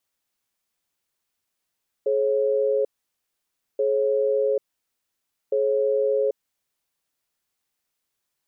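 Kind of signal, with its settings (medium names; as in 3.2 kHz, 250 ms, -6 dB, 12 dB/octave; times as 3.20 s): cadence 424 Hz, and 544 Hz, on 0.79 s, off 0.94 s, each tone -21.5 dBFS 5.15 s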